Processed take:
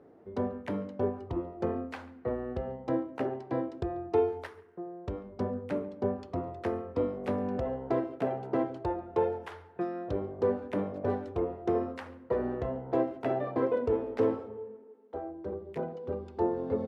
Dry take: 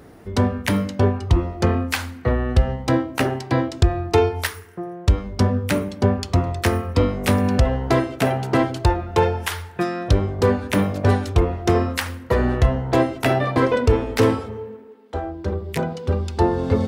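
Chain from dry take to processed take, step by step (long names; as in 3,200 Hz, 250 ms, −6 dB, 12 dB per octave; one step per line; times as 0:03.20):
resonant band-pass 460 Hz, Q 1
far-end echo of a speakerphone 140 ms, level −22 dB
level −8 dB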